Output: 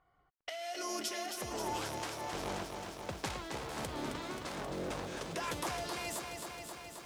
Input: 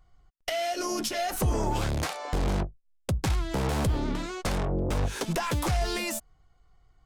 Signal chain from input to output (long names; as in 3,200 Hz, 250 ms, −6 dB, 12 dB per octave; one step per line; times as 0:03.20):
high-pass filter 490 Hz 6 dB per octave
low-pass that shuts in the quiet parts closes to 1,900 Hz, open at −28.5 dBFS
downward compressor 1.5 to 1, threshold −52 dBFS, peak gain reduction 9 dB
shaped tremolo triangle 1.3 Hz, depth 55%
feedback echo at a low word length 266 ms, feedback 80%, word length 11 bits, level −6 dB
level +3 dB